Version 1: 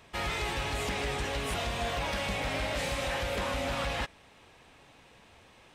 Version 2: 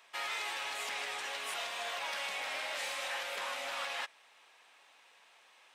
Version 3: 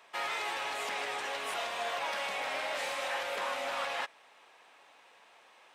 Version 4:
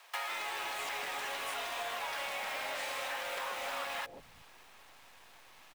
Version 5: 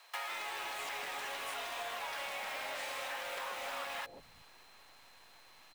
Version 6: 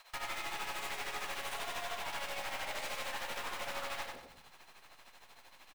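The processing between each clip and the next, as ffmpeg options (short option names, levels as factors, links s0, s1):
-af "highpass=860,volume=0.75"
-af "tiltshelf=f=1400:g=5,volume=1.5"
-filter_complex "[0:a]acrusher=bits=8:dc=4:mix=0:aa=0.000001,acrossover=split=160|480[s0][s1][s2];[s1]adelay=140[s3];[s0]adelay=350[s4];[s4][s3][s2]amix=inputs=3:normalize=0,acompressor=threshold=0.00891:ratio=6,volume=1.88"
-af "aeval=exprs='val(0)+0.000708*sin(2*PI*4100*n/s)':c=same,volume=0.75"
-af "tremolo=f=13:d=0.77,aeval=exprs='(tanh(178*val(0)+0.75)-tanh(0.75))/178':c=same,aecho=1:1:95|190|285|380:0.631|0.215|0.0729|0.0248,volume=2.51"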